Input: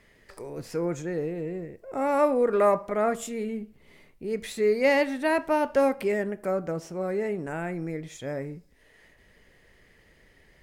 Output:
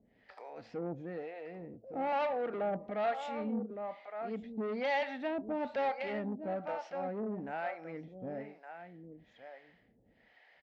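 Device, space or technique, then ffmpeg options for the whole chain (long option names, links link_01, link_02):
guitar amplifier with harmonic tremolo: -filter_complex "[0:a]asettb=1/sr,asplit=3[link_01][link_02][link_03];[link_01]atrim=end=2.124[link_04];[link_02]atrim=start=2.12:end=2.54,asetpts=PTS-STARTPTS,afade=type=in:duration=0.004:curve=qsin,afade=type=out:start_time=0.416:duration=0.004:curve=qsin,highpass=frequency=240:width=0.5412,highpass=frequency=240:width=1.3066[link_05];[link_03]atrim=start=2.536[link_06];[link_04][link_05]acrossfade=duration=0.004:curve1=hsin:curve2=qsin[link_07];[link_07][link_06]acrossfade=duration=0.004:curve1=qsin:curve2=hsin,aecho=1:1:1164:0.251,acrossover=split=520[link_08][link_09];[link_08]aeval=exprs='val(0)*(1-1/2+1/2*cos(2*PI*1.1*n/s))':channel_layout=same[link_10];[link_09]aeval=exprs='val(0)*(1-1/2-1/2*cos(2*PI*1.1*n/s))':channel_layout=same[link_11];[link_10][link_11]amix=inputs=2:normalize=0,asoftclip=type=tanh:threshold=-28.5dB,highpass=79,equalizer=frequency=80:width_type=q:width=4:gain=-10,equalizer=frequency=150:width_type=q:width=4:gain=-8,equalizer=frequency=230:width_type=q:width=4:gain=5,equalizer=frequency=380:width_type=q:width=4:gain=-8,equalizer=frequency=760:width_type=q:width=4:gain=9,equalizer=frequency=1100:width_type=q:width=4:gain=-5,lowpass=frequency=4000:width=0.5412,lowpass=frequency=4000:width=1.3066,volume=-1.5dB"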